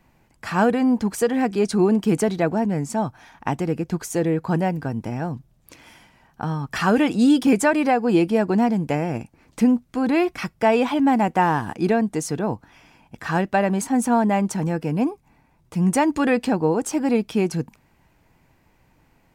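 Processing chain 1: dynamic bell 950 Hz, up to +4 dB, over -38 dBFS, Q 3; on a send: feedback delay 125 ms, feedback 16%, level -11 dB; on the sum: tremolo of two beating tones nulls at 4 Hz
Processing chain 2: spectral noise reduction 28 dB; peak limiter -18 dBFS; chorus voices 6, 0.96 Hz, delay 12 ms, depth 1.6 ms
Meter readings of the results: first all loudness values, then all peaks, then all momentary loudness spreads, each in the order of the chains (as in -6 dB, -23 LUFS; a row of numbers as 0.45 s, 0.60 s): -24.0 LUFS, -30.0 LUFS; -5.5 dBFS, -15.0 dBFS; 10 LU, 7 LU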